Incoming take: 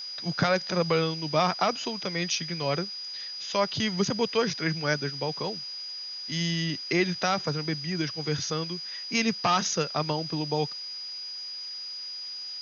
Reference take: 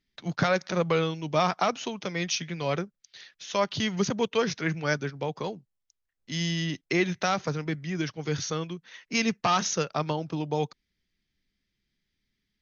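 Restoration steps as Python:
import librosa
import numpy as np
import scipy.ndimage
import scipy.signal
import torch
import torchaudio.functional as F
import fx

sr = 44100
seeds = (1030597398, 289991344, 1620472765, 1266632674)

y = fx.notch(x, sr, hz=4900.0, q=30.0)
y = fx.noise_reduce(y, sr, print_start_s=10.73, print_end_s=11.23, reduce_db=30.0)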